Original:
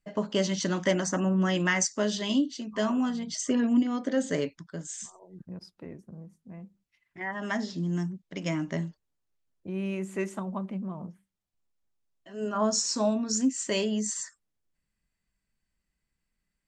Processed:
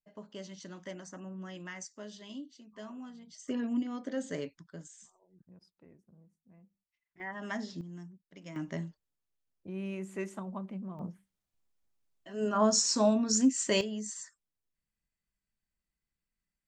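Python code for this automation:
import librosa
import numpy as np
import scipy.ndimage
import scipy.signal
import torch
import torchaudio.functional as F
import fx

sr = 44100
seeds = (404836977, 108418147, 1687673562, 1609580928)

y = fx.gain(x, sr, db=fx.steps((0.0, -18.0), (3.48, -8.5), (4.88, -16.0), (7.2, -6.5), (7.81, -16.0), (8.56, -6.0), (10.99, 0.5), (13.81, -8.5)))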